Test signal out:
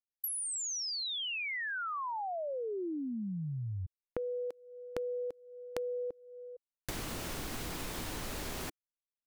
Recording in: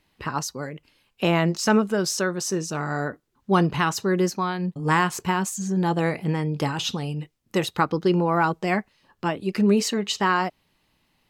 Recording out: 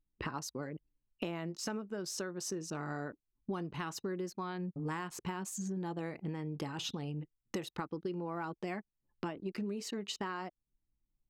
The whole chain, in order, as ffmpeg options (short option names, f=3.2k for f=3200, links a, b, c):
-af "anlmdn=1.58,equalizer=f=320:t=o:w=0.69:g=4.5,acompressor=threshold=-34dB:ratio=10,volume=-2dB"